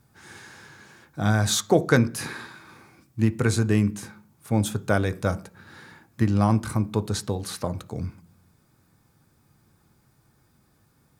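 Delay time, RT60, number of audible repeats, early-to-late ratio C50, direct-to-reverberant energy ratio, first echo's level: no echo, 0.50 s, no echo, 20.5 dB, 10.0 dB, no echo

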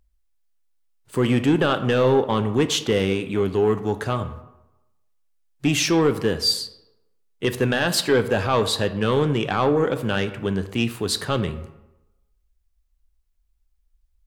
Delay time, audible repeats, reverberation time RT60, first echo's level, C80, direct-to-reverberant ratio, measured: no echo, no echo, 0.95 s, no echo, 15.0 dB, 9.5 dB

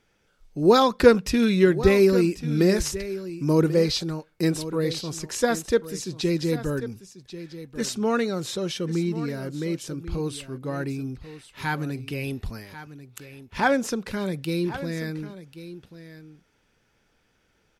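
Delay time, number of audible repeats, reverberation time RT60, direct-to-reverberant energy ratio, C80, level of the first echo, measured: 1090 ms, 1, no reverb, no reverb, no reverb, -14.0 dB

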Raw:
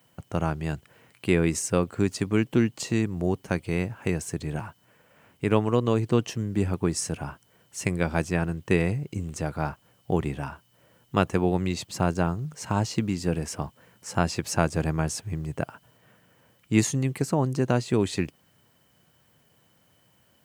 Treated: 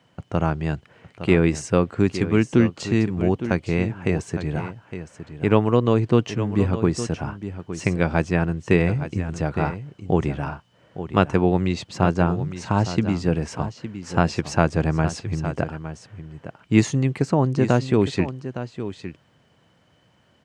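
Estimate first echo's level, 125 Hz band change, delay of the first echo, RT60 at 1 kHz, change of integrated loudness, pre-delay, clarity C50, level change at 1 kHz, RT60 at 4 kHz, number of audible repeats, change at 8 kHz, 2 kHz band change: -11.5 dB, +5.0 dB, 862 ms, no reverb, +4.5 dB, no reverb, no reverb, +5.0 dB, no reverb, 1, -4.0 dB, +4.0 dB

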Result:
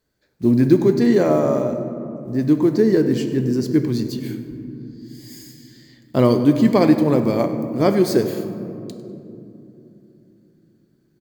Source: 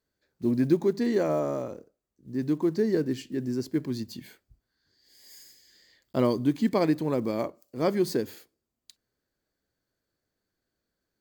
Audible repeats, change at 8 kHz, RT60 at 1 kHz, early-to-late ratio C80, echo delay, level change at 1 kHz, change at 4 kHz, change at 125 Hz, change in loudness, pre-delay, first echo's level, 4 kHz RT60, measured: 1, +8.0 dB, 2.5 s, 9.5 dB, 100 ms, +9.0 dB, +8.0 dB, +12.0 dB, +9.5 dB, 7 ms, -17.0 dB, 1.3 s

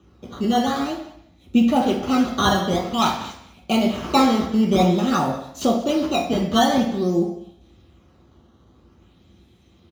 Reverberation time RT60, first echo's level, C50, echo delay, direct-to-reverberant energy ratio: 0.70 s, -18.0 dB, 6.0 dB, 196 ms, -2.0 dB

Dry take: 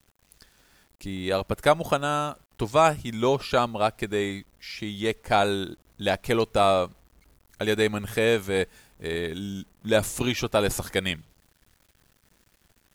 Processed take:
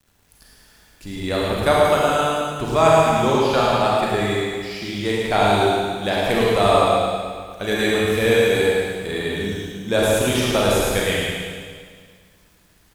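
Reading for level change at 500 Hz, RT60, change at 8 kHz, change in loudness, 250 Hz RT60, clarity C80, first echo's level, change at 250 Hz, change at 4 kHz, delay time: +7.0 dB, 1.9 s, +6.5 dB, +6.5 dB, 1.9 s, -2.0 dB, -4.5 dB, +6.5 dB, +7.0 dB, 108 ms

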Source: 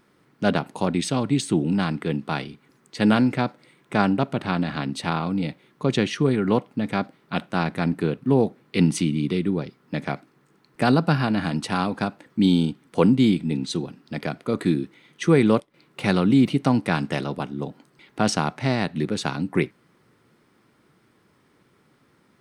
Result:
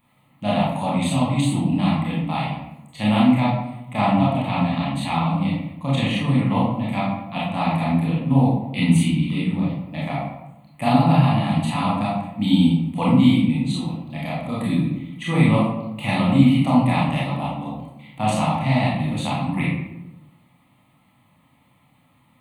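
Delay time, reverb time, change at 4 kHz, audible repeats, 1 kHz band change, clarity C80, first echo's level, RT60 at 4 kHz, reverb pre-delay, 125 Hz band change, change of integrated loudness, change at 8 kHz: no echo, 0.95 s, +2.0 dB, no echo, +5.0 dB, 4.0 dB, no echo, 0.55 s, 24 ms, +5.5 dB, +2.5 dB, -2.0 dB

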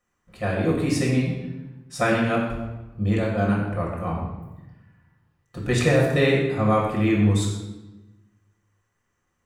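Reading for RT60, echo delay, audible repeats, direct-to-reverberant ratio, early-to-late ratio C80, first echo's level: 1.1 s, no echo, no echo, -3.5 dB, 4.0 dB, no echo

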